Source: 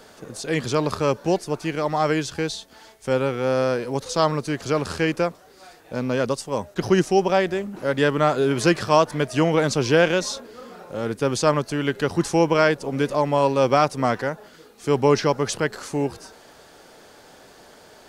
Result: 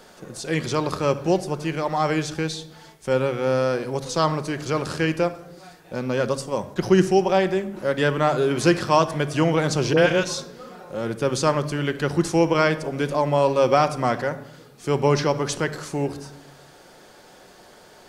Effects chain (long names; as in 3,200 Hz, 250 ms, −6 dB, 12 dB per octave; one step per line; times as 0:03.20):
0:09.93–0:10.69: all-pass dispersion highs, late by 46 ms, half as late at 910 Hz
convolution reverb RT60 0.85 s, pre-delay 6 ms, DRR 9 dB
level −1 dB